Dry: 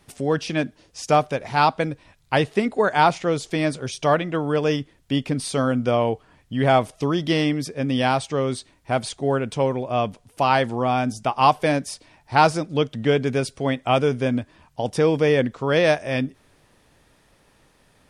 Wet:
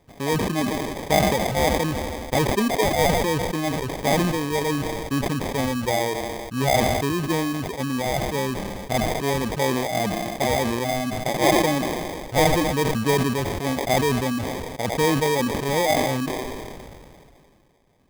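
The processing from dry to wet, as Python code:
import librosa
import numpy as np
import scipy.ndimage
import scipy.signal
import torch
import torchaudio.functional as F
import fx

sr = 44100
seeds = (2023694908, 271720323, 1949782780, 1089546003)

y = fx.dereverb_blind(x, sr, rt60_s=1.3)
y = fx.env_lowpass_down(y, sr, base_hz=1400.0, full_db=-22.0)
y = fx.echo_wet_highpass(y, sr, ms=81, feedback_pct=64, hz=1500.0, wet_db=-10.5)
y = fx.sample_hold(y, sr, seeds[0], rate_hz=1400.0, jitter_pct=0)
y = fx.sustainer(y, sr, db_per_s=25.0)
y = F.gain(torch.from_numpy(y), -2.0).numpy()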